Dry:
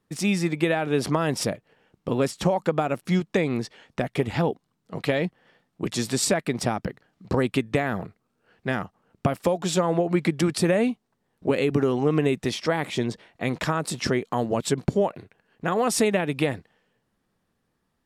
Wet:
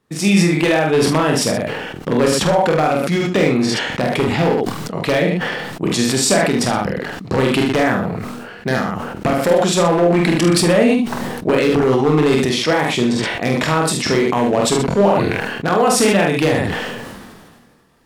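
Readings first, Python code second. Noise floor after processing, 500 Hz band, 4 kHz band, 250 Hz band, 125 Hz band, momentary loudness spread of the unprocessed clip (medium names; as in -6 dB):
-38 dBFS, +9.0 dB, +11.5 dB, +9.0 dB, +7.5 dB, 10 LU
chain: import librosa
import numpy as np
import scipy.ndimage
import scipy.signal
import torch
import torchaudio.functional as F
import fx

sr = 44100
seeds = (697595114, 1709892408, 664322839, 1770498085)

p1 = fx.recorder_agc(x, sr, target_db=-17.5, rise_db_per_s=6.9, max_gain_db=30)
p2 = fx.high_shelf(p1, sr, hz=7600.0, db=-3.0)
p3 = 10.0 ** (-14.5 / 20.0) * (np.abs((p2 / 10.0 ** (-14.5 / 20.0) + 3.0) % 4.0 - 2.0) - 1.0)
p4 = fx.low_shelf(p3, sr, hz=85.0, db=-8.0)
p5 = fx.doubler(p4, sr, ms=46.0, db=-3.5)
p6 = p5 + fx.room_early_taps(p5, sr, ms=(25, 75), db=(-8.0, -9.5), dry=0)
p7 = fx.sustainer(p6, sr, db_per_s=31.0)
y = p7 * librosa.db_to_amplitude(6.5)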